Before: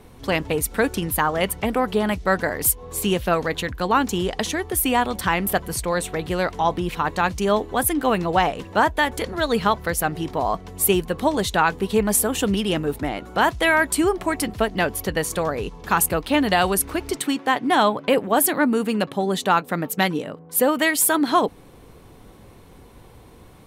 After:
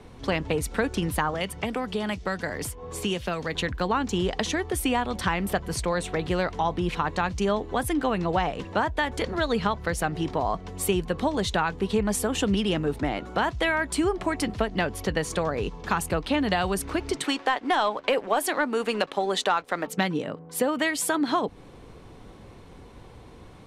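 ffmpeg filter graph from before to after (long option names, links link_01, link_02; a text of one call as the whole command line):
ffmpeg -i in.wav -filter_complex "[0:a]asettb=1/sr,asplit=3[link_01][link_02][link_03];[link_01]atrim=end=1.344[link_04];[link_02]atrim=start=1.34:end=3.55,asetpts=PTS-STARTPTS,afade=type=in:duration=0.004:curve=qsin,afade=type=out:start_time=2.206:duration=0.004:curve=qsin,highpass=52,acrossover=split=220|2600[link_05][link_06][link_07];[link_05]acompressor=threshold=-35dB:ratio=4[link_08];[link_06]acompressor=threshold=-28dB:ratio=4[link_09];[link_07]acompressor=threshold=-27dB:ratio=4[link_10];[link_08][link_09][link_10]amix=inputs=3:normalize=0,bandreject=frequency=4000:width=23[link_11];[link_03]atrim=start=3.546[link_12];[link_04][link_11]acrossfade=duration=0.004:curve1=hsin:curve2=qsin[link_13];[link_13][link_12]acrossfade=duration=0.004:curve1=qsin:curve2=hsin,asettb=1/sr,asplit=3[link_14][link_15][link_16];[link_14]atrim=end=17.244[link_17];[link_15]atrim=start=17.24:end=19.87,asetpts=PTS-STARTPTS,afade=type=in:duration=0.004:curve=qsin,afade=type=out:start_time=2.626:duration=0.004:curve=qsin,highpass=440,acontrast=34,aeval=exprs='sgn(val(0))*max(abs(val(0))-0.00501,0)':channel_layout=same[link_18];[link_16]atrim=start=19.866[link_19];[link_17][link_18]acrossfade=duration=0.004:curve1=hsin:curve2=qsin[link_20];[link_20][link_19]acrossfade=duration=0.004:curve1=qsin:curve2=hsin,lowpass=6900,acrossover=split=150[link_21][link_22];[link_22]acompressor=threshold=-23dB:ratio=3[link_23];[link_21][link_23]amix=inputs=2:normalize=0" out.wav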